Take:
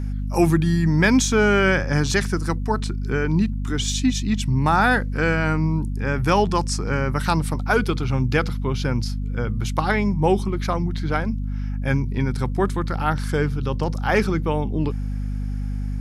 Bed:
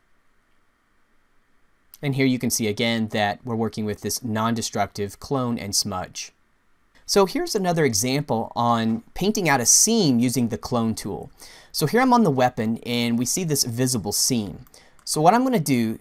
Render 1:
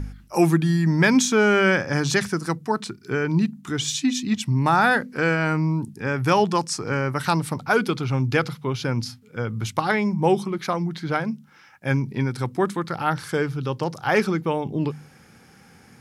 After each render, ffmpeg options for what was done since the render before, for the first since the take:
-af "bandreject=f=50:t=h:w=4,bandreject=f=100:t=h:w=4,bandreject=f=150:t=h:w=4,bandreject=f=200:t=h:w=4,bandreject=f=250:t=h:w=4"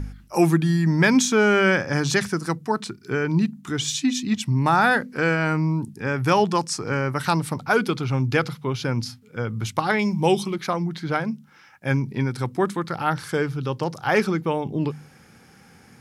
-filter_complex "[0:a]asettb=1/sr,asplit=3[a][b][c];[a]atrim=end=9.994[d];[b]atrim=start=9.99:end=10.56,asetpts=PTS-STARTPTS,afade=t=in:d=0.004:c=qsin,afade=t=out:st=0.566:d=0.004:c=qsin,highshelf=f=2.2k:t=q:w=1.5:g=7[e];[c]atrim=start=10.556[f];[d][e]acrossfade=d=0.004:c1=hsin:c2=qsin[g];[g][f]acrossfade=d=0.004:c1=qsin:c2=hsin"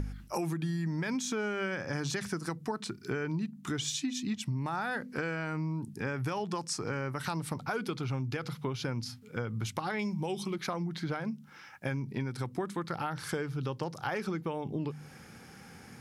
-af "alimiter=limit=-13dB:level=0:latency=1:release=92,acompressor=threshold=-32dB:ratio=5"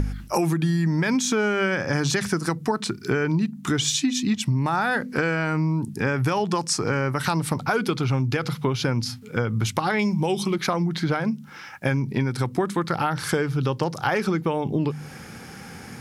-af "volume=11dB"

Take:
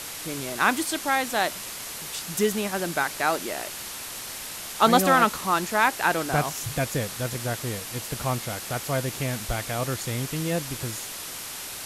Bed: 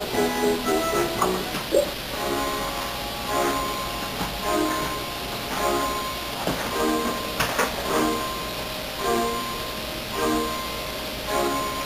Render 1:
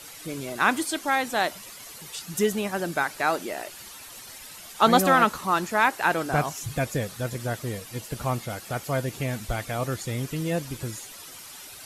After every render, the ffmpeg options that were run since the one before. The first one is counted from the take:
-af "afftdn=nr=11:nf=-37"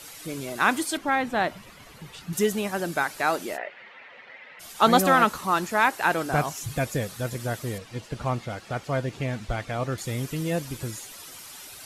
-filter_complex "[0:a]asettb=1/sr,asplit=3[a][b][c];[a]atrim=end=0.974[d];[b]atrim=start=0.97:end=2.33,asetpts=PTS-STARTPTS,afade=t=in:d=0.004:c=qsin,afade=t=out:st=1.356:d=0.004:c=qsin,bass=f=250:g=8,treble=f=4k:g=-14[e];[c]atrim=start=2.326[f];[d][e]acrossfade=d=0.004:c1=hsin:c2=qsin[g];[g][f]acrossfade=d=0.004:c1=qsin:c2=hsin,asplit=3[h][i][j];[h]afade=t=out:st=3.56:d=0.02[k];[i]highpass=270,equalizer=f=320:t=q:w=4:g=-9,equalizer=f=530:t=q:w=4:g=6,equalizer=f=1.1k:t=q:w=4:g=-3,equalizer=f=2k:t=q:w=4:g=10,lowpass=f=2.7k:w=0.5412,lowpass=f=2.7k:w=1.3066,afade=t=in:st=3.56:d=0.02,afade=t=out:st=4.59:d=0.02[l];[j]afade=t=in:st=4.59:d=0.02[m];[k][l][m]amix=inputs=3:normalize=0,asettb=1/sr,asplit=3[n][o][p];[n]atrim=end=7.784[q];[o]atrim=start=7.78:end=9.98,asetpts=PTS-STARTPTS,afade=t=in:d=0.004:c=qsin,afade=t=out:st=2.196:d=0.004:c=qsin,adynamicsmooth=sensitivity=2.5:basefreq=5.1k[r];[p]atrim=start=9.976[s];[q][r]acrossfade=d=0.004:c1=hsin:c2=qsin[t];[t][s]acrossfade=d=0.004:c1=qsin:c2=hsin"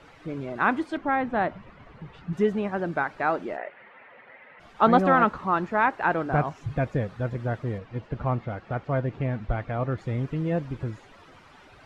-af "lowpass=1.7k,lowshelf=f=150:g=4"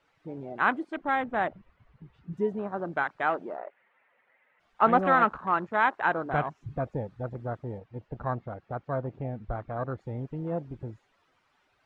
-af "afwtdn=0.02,lowshelf=f=490:g=-8"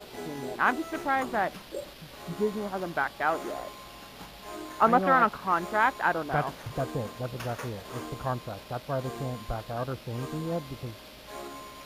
-filter_complex "[1:a]volume=-17dB[a];[0:a][a]amix=inputs=2:normalize=0"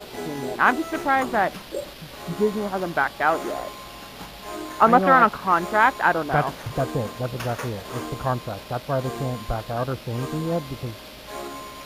-af "volume=6.5dB,alimiter=limit=-3dB:level=0:latency=1"

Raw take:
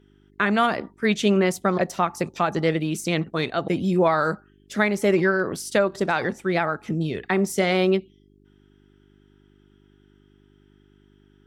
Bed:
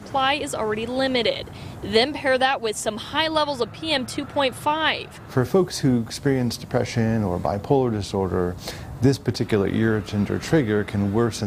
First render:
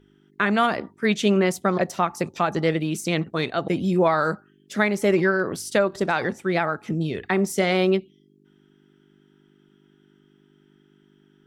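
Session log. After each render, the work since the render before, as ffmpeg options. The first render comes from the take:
-af "bandreject=f=50:t=h:w=4,bandreject=f=100:t=h:w=4"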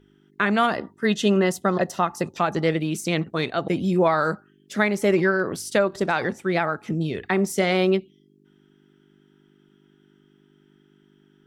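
-filter_complex "[0:a]asettb=1/sr,asplit=3[a][b][c];[a]atrim=end=0.704[d];[b]atrim=start=0.7:end=2.37,asetpts=PTS-STARTPTS,afade=t=in:d=0.004:c=qsin,afade=t=out:st=1.666:d=0.004:c=qsin,asuperstop=centerf=2300:order=8:qfactor=7.7[e];[c]atrim=start=2.366[f];[d][e]acrossfade=d=0.004:c1=hsin:c2=qsin[g];[g][f]acrossfade=d=0.004:c1=qsin:c2=hsin"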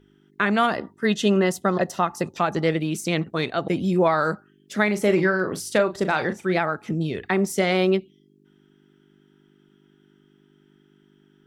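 -filter_complex "[0:a]asettb=1/sr,asplit=3[a][b][c];[a]atrim=end=4.844[d];[b]atrim=start=4.84:end=6.57,asetpts=PTS-STARTPTS,afade=t=in:d=0.004:c=qsin,afade=t=out:st=1.726:d=0.004:c=qsin,asplit=2[e][f];[f]adelay=38,volume=-10dB[g];[e][g]amix=inputs=2:normalize=0,atrim=end_sample=76293[h];[c]atrim=start=6.566[i];[d][h]acrossfade=d=0.004:c1=hsin:c2=qsin[j];[j][i]acrossfade=d=0.004:c1=qsin:c2=hsin"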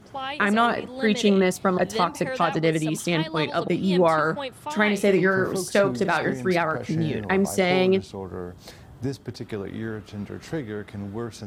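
-filter_complex "[1:a]volume=-11dB[a];[0:a][a]amix=inputs=2:normalize=0"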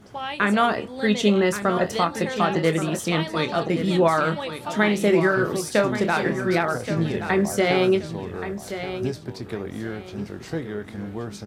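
-filter_complex "[0:a]asplit=2[a][b];[b]adelay=24,volume=-10.5dB[c];[a][c]amix=inputs=2:normalize=0,aecho=1:1:1126|2252|3378:0.299|0.0806|0.0218"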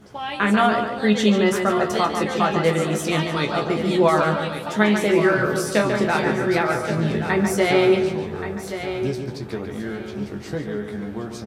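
-filter_complex "[0:a]asplit=2[a][b];[b]adelay=14,volume=-5.5dB[c];[a][c]amix=inputs=2:normalize=0,asplit=2[d][e];[e]adelay=143,lowpass=f=5k:p=1,volume=-6.5dB,asplit=2[f][g];[g]adelay=143,lowpass=f=5k:p=1,volume=0.43,asplit=2[h][i];[i]adelay=143,lowpass=f=5k:p=1,volume=0.43,asplit=2[j][k];[k]adelay=143,lowpass=f=5k:p=1,volume=0.43,asplit=2[l][m];[m]adelay=143,lowpass=f=5k:p=1,volume=0.43[n];[d][f][h][j][l][n]amix=inputs=6:normalize=0"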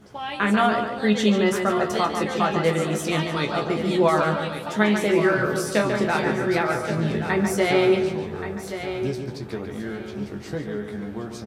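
-af "volume=-2dB"

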